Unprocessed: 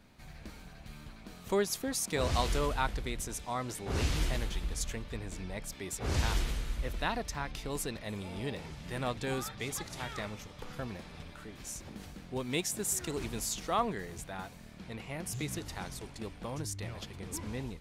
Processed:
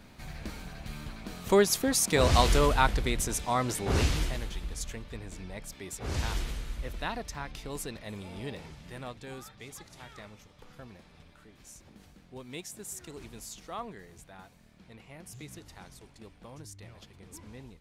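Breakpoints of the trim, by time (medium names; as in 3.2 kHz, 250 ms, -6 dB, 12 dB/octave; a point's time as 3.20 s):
3.89 s +7.5 dB
4.35 s -1.5 dB
8.64 s -1.5 dB
9.20 s -8.5 dB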